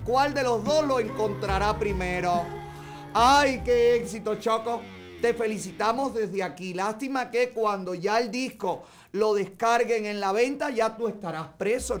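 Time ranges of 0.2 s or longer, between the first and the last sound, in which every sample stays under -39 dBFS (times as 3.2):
8.82–9.14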